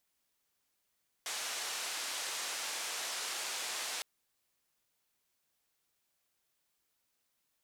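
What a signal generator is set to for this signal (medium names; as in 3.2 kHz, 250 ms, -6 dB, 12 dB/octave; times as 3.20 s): noise band 530–7800 Hz, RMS -39 dBFS 2.76 s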